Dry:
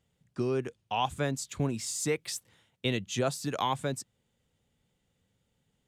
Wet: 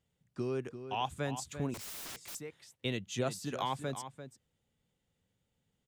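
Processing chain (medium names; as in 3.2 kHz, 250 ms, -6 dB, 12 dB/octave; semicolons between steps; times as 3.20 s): echo from a far wall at 59 m, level -10 dB; 1.74–2.35 s: integer overflow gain 34 dB; trim -5.5 dB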